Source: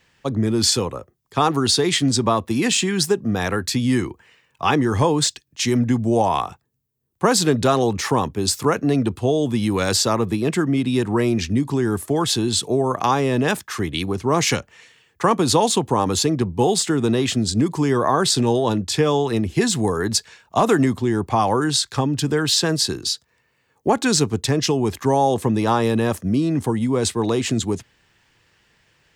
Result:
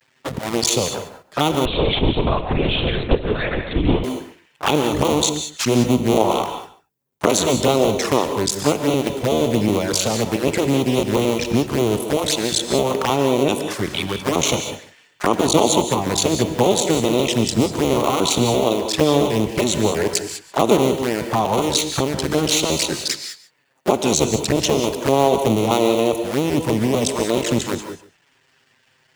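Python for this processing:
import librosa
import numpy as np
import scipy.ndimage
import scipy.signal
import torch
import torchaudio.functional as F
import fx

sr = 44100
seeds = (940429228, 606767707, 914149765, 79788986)

y = fx.cycle_switch(x, sr, every=2, mode='muted')
y = fx.highpass(y, sr, hz=190.0, slope=6)
y = fx.env_flanger(y, sr, rest_ms=7.9, full_db=-19.5)
y = y + 10.0 ** (-17.0 / 20.0) * np.pad(y, (int(142 * sr / 1000.0), 0))[:len(y)]
y = fx.rev_gated(y, sr, seeds[0], gate_ms=220, shape='rising', drr_db=7.5)
y = fx.lpc_vocoder(y, sr, seeds[1], excitation='whisper', order=10, at=(1.65, 4.04))
y = y * 10.0 ** (6.0 / 20.0)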